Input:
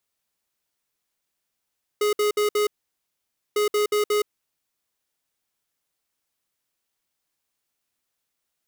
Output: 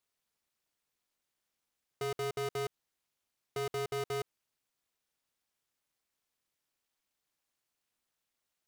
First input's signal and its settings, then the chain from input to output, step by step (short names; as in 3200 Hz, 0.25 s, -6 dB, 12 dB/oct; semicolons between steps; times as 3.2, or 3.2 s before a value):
beep pattern square 418 Hz, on 0.12 s, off 0.06 s, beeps 4, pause 0.89 s, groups 2, -21 dBFS
high shelf 8900 Hz -5 dB; limiter -30.5 dBFS; AM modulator 290 Hz, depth 75%